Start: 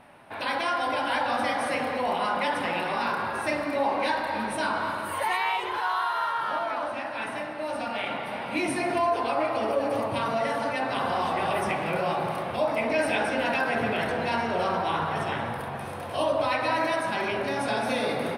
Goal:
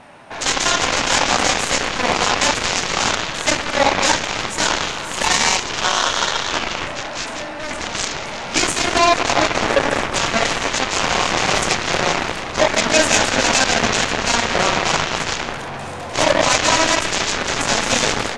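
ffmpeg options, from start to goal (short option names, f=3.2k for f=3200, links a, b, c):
-af "acontrast=53,aeval=exprs='0.376*(cos(1*acos(clip(val(0)/0.376,-1,1)))-cos(1*PI/2))+0.0335*(cos(3*acos(clip(val(0)/0.376,-1,1)))-cos(3*PI/2))+0.0106*(cos(6*acos(clip(val(0)/0.376,-1,1)))-cos(6*PI/2))+0.0841*(cos(7*acos(clip(val(0)/0.376,-1,1)))-cos(7*PI/2))+0.0188*(cos(8*acos(clip(val(0)/0.376,-1,1)))-cos(8*PI/2))':c=same,lowpass=f=6.9k:t=q:w=3.6,volume=4.5dB"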